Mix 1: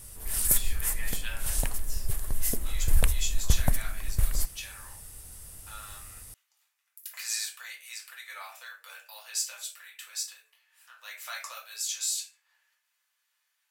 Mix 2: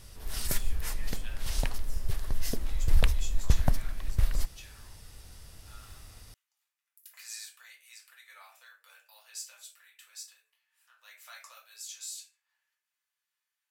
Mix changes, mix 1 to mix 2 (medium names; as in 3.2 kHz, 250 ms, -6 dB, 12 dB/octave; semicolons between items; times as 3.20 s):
speech -10.5 dB; background: add resonant high shelf 6.7 kHz -10.5 dB, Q 1.5